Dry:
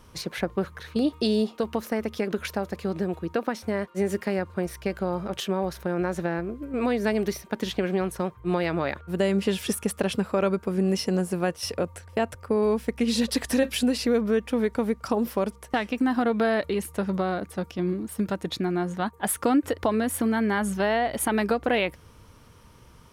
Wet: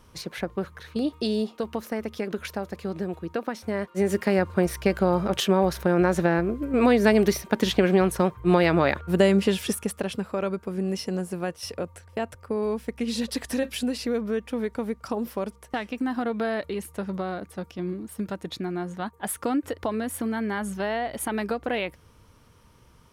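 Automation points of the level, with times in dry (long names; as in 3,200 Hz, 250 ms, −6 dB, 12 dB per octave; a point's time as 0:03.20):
0:03.55 −2.5 dB
0:04.46 +6 dB
0:09.14 +6 dB
0:10.09 −4 dB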